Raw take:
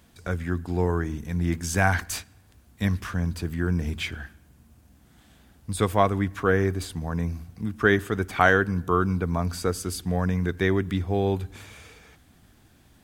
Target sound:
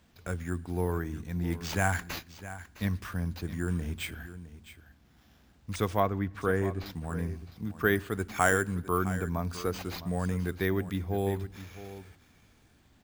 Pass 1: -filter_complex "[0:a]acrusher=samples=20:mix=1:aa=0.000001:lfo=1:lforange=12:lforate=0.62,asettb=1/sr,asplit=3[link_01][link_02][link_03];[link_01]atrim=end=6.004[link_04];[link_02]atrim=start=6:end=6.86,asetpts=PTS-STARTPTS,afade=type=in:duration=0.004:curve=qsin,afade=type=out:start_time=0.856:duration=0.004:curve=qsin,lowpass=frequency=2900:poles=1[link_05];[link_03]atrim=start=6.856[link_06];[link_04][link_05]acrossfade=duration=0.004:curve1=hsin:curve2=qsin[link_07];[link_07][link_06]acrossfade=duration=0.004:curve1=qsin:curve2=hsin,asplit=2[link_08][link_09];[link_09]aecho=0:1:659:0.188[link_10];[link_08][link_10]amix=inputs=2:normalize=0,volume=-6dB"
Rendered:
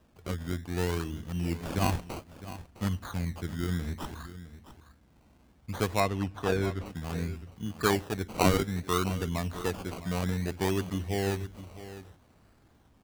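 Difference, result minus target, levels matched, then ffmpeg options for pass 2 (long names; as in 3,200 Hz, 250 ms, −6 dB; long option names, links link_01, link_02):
sample-and-hold swept by an LFO: distortion +12 dB
-filter_complex "[0:a]acrusher=samples=4:mix=1:aa=0.000001:lfo=1:lforange=2.4:lforate=0.62,asettb=1/sr,asplit=3[link_01][link_02][link_03];[link_01]atrim=end=6.004[link_04];[link_02]atrim=start=6:end=6.86,asetpts=PTS-STARTPTS,afade=type=in:duration=0.004:curve=qsin,afade=type=out:start_time=0.856:duration=0.004:curve=qsin,lowpass=frequency=2900:poles=1[link_05];[link_03]atrim=start=6.856[link_06];[link_04][link_05]acrossfade=duration=0.004:curve1=hsin:curve2=qsin[link_07];[link_07][link_06]acrossfade=duration=0.004:curve1=qsin:curve2=hsin,asplit=2[link_08][link_09];[link_09]aecho=0:1:659:0.188[link_10];[link_08][link_10]amix=inputs=2:normalize=0,volume=-6dB"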